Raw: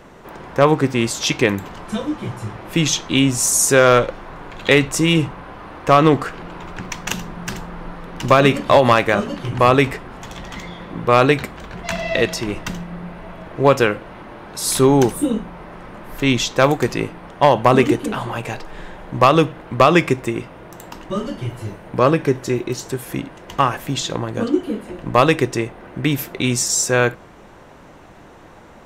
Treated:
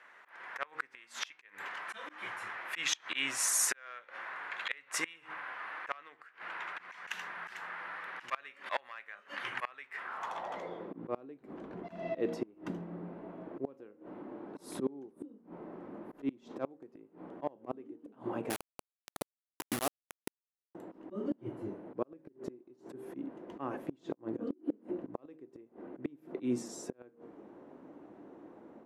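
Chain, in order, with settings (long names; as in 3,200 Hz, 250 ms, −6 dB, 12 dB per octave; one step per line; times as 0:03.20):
hum removal 78.22 Hz, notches 7
volume swells 175 ms
band-pass filter sweep 1,800 Hz → 290 Hz, 0:09.98–0:10.96
gate with flip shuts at −21 dBFS, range −28 dB
0:18.50–0:20.75: bit-depth reduction 6 bits, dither none
parametric band 11,000 Hz +12 dB 0.57 octaves
automatic gain control gain up to 6.5 dB
low-shelf EQ 240 Hz −12 dB
level −3.5 dB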